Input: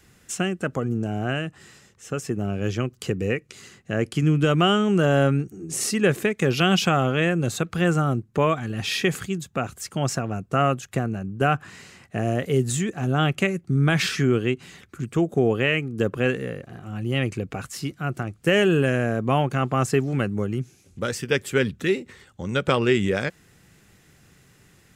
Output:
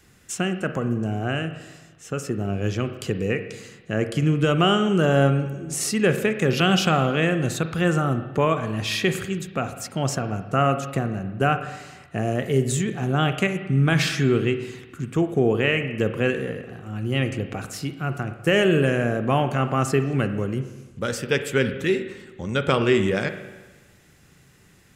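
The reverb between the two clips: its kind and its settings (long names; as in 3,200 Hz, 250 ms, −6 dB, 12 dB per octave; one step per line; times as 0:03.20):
spring reverb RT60 1.2 s, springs 37/50 ms, chirp 20 ms, DRR 8.5 dB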